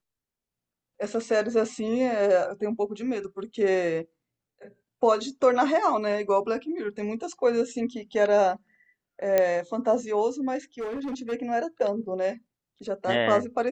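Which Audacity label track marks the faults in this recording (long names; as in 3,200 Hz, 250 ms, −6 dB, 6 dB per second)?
9.380000	9.380000	click −9 dBFS
10.790000	11.330000	clipping −28.5 dBFS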